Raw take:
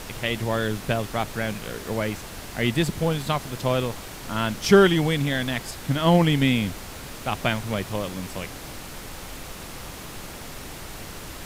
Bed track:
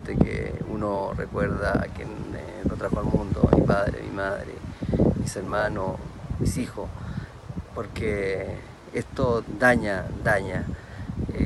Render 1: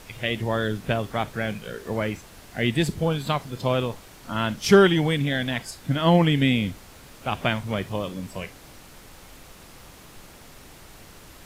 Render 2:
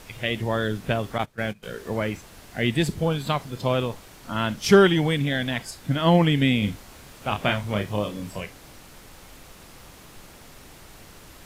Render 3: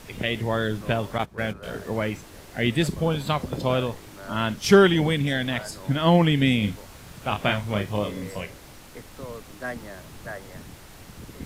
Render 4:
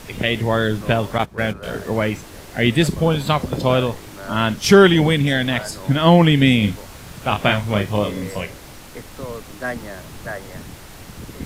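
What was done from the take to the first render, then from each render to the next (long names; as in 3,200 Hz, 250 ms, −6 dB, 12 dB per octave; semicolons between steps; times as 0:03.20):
noise reduction from a noise print 9 dB
0:01.18–0:01.63: noise gate −29 dBFS, range −19 dB; 0:06.59–0:08.41: double-tracking delay 29 ms −5.5 dB
mix in bed track −14.5 dB
level +6.5 dB; brickwall limiter −1 dBFS, peak gain reduction 3 dB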